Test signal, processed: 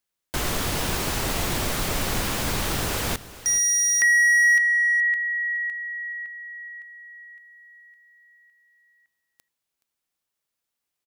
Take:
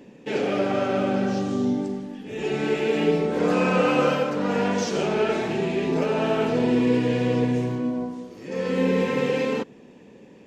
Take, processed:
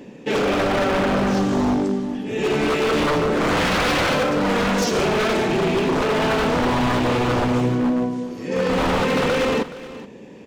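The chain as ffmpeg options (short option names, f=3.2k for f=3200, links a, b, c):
-af "aeval=exprs='0.0841*(abs(mod(val(0)/0.0841+3,4)-2)-1)':c=same,aecho=1:1:423:0.15,volume=7dB"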